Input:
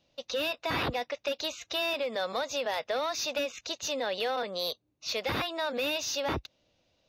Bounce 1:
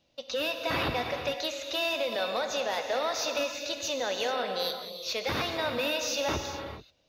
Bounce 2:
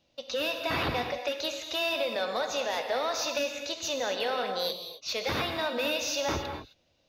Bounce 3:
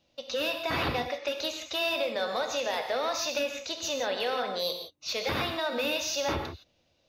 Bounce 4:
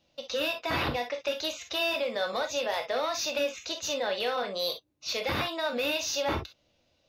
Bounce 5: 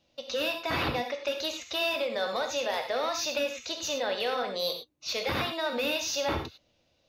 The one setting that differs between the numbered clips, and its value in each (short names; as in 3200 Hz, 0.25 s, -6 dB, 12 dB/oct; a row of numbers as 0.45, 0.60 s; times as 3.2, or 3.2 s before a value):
non-linear reverb, gate: 460, 290, 190, 80, 130 ms